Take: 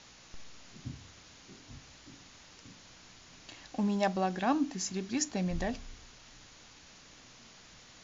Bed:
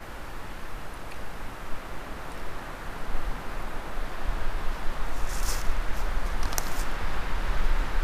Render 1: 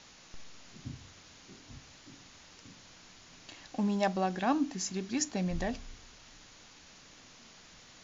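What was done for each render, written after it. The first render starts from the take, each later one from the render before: de-hum 60 Hz, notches 2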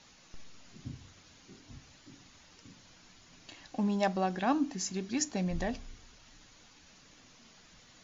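noise reduction 6 dB, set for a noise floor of -56 dBFS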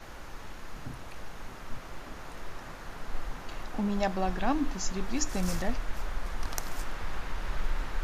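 add bed -6 dB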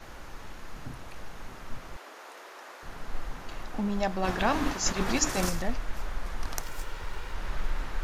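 1.96–2.83 s: high-pass 370 Hz 24 dB/octave; 4.23–5.48 s: spectral peaks clipped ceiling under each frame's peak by 16 dB; 6.62–7.36 s: comb filter that takes the minimum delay 2.1 ms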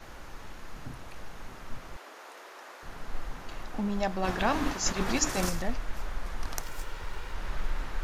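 trim -1 dB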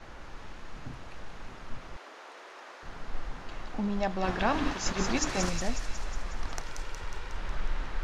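distance through air 77 m; feedback echo behind a high-pass 182 ms, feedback 65%, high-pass 2.6 kHz, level -4 dB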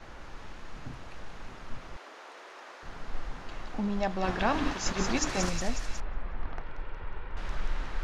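6.00–7.37 s: distance through air 470 m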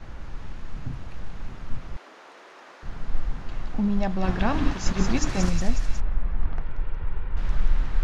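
tone controls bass +11 dB, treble -1 dB

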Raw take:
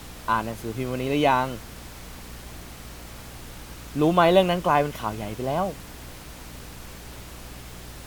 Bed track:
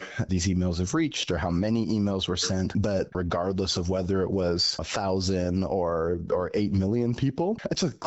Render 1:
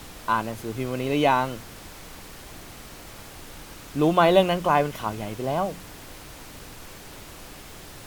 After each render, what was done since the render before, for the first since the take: de-hum 60 Hz, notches 4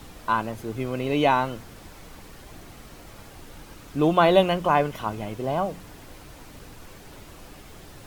noise reduction 6 dB, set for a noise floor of -44 dBFS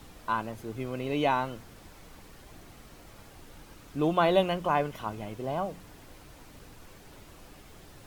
trim -6 dB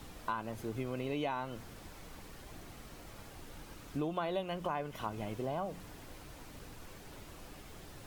compression 6:1, threshold -33 dBFS, peak gain reduction 14.5 dB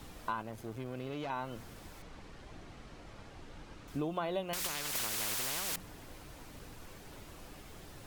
0.42–1.30 s: valve stage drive 35 dB, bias 0.65; 2.02–3.88 s: distance through air 84 m; 4.53–5.76 s: spectrum-flattening compressor 10:1

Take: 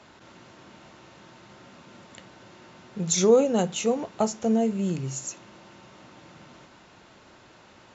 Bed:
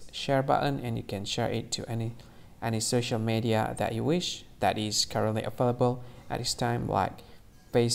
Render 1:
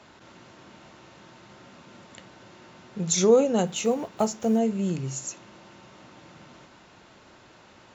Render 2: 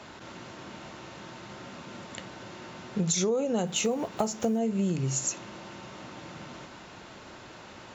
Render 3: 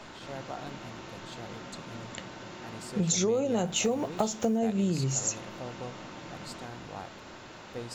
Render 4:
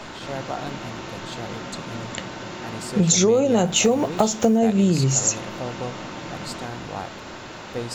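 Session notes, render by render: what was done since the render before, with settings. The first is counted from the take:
3.66–4.60 s: block-companded coder 7-bit
in parallel at 0 dB: peak limiter -18.5 dBFS, peak gain reduction 10 dB; on the sum: compression 10:1, threshold -24 dBFS, peak gain reduction 14 dB
add bed -15.5 dB
trim +9.5 dB; peak limiter -3 dBFS, peak gain reduction 0.5 dB

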